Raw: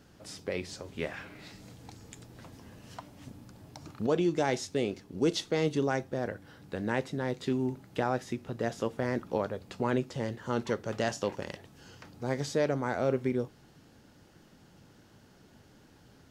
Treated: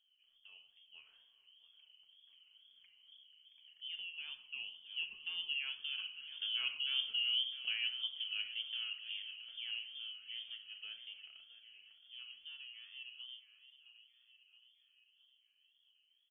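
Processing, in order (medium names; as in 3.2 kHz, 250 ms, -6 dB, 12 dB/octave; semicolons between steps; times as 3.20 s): Doppler pass-by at 6.97 s, 16 m/s, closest 2.2 m; tilt EQ -4.5 dB/octave; reverse; compression 12:1, threshold -35 dBFS, peak gain reduction 15.5 dB; reverse; frequency inversion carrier 3.2 kHz; feedback delay 669 ms, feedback 57%, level -13 dB; simulated room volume 2000 m³, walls furnished, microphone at 1.6 m; wow and flutter 81 cents; trim +1.5 dB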